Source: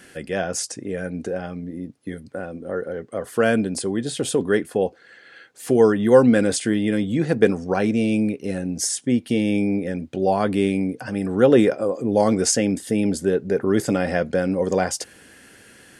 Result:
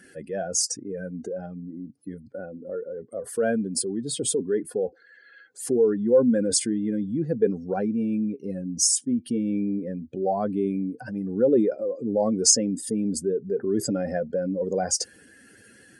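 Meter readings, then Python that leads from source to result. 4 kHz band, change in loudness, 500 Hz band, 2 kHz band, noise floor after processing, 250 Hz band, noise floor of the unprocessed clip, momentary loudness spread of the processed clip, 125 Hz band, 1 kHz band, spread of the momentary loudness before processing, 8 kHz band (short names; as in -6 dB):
0.0 dB, -4.0 dB, -5.0 dB, -13.0 dB, -54 dBFS, -5.0 dB, -50 dBFS, 14 LU, -7.0 dB, -7.5 dB, 13 LU, +3.5 dB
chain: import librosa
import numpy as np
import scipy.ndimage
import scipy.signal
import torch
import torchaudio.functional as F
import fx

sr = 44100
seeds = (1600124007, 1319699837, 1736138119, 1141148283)

y = fx.spec_expand(x, sr, power=1.8)
y = fx.band_shelf(y, sr, hz=7000.0, db=8.5, octaves=1.7)
y = y * librosa.db_to_amplitude(-5.0)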